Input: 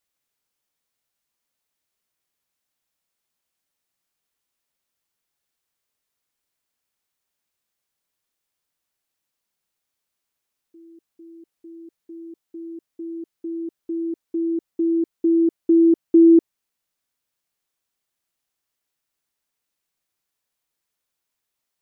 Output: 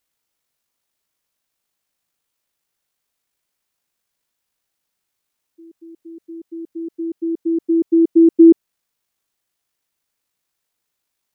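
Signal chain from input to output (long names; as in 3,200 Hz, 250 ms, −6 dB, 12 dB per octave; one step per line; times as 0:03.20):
time stretch by overlap-add 0.52×, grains 39 ms
level +5 dB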